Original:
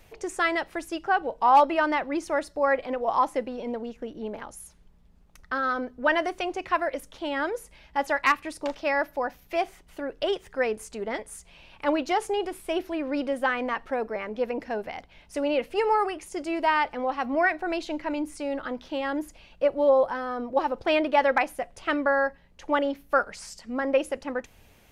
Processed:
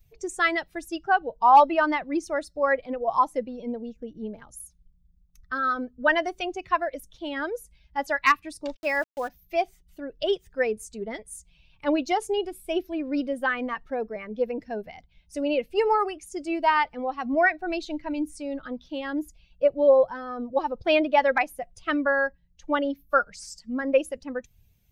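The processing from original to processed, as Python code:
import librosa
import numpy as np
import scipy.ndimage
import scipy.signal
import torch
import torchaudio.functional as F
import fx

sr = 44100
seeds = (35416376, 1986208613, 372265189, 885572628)

y = fx.bin_expand(x, sr, power=1.5)
y = fx.sample_gate(y, sr, floor_db=-45.0, at=(8.75, 9.27), fade=0.02)
y = y * 10.0 ** (4.0 / 20.0)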